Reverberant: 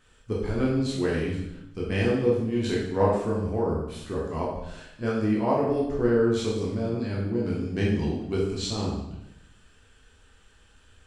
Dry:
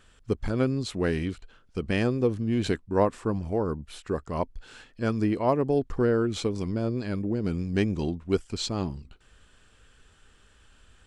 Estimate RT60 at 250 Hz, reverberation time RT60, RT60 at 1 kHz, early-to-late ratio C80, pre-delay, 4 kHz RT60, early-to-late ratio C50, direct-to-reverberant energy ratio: 1.0 s, 0.85 s, 0.80 s, 5.0 dB, 12 ms, 0.75 s, 1.5 dB, -5.0 dB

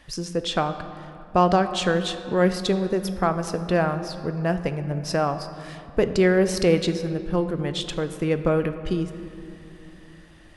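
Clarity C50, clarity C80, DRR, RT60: 10.5 dB, 11.5 dB, 9.0 dB, 2.9 s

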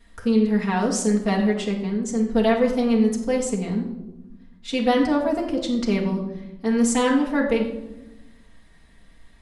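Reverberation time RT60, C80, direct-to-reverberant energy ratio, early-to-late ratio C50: 1.0 s, 9.5 dB, -4.0 dB, 6.5 dB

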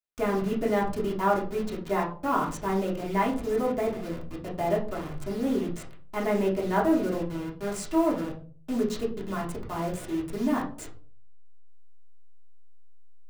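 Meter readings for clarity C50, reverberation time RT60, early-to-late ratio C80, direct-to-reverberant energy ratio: 9.0 dB, 0.45 s, 14.5 dB, -4.5 dB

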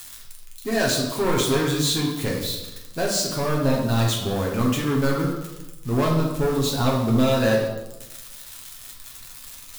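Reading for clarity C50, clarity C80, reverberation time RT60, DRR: 3.5 dB, 6.5 dB, 1.0 s, -2.5 dB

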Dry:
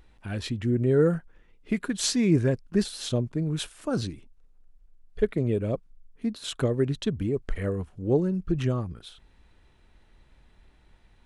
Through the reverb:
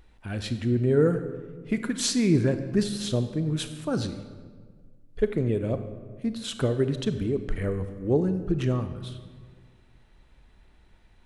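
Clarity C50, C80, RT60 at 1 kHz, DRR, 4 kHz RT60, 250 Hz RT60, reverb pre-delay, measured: 10.0 dB, 11.5 dB, 1.5 s, 9.0 dB, 1.0 s, 1.9 s, 29 ms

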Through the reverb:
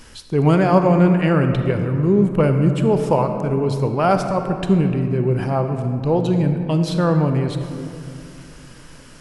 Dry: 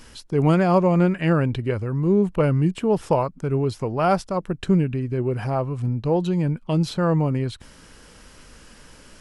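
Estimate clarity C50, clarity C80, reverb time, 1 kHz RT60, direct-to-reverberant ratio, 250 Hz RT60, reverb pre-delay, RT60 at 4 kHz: 6.5 dB, 7.5 dB, 2.6 s, 2.4 s, 6.0 dB, 3.3 s, 31 ms, 1.2 s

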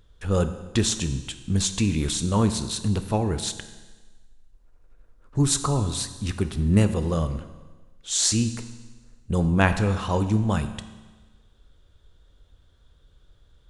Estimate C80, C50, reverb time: 13.0 dB, 11.5 dB, 1.3 s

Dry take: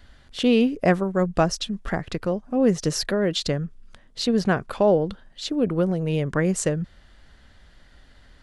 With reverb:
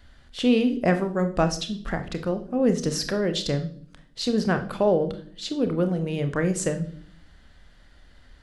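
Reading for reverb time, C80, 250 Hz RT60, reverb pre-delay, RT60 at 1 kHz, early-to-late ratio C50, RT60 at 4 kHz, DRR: 0.55 s, 18.0 dB, 1.0 s, 28 ms, 0.40 s, 13.0 dB, 0.50 s, 8.0 dB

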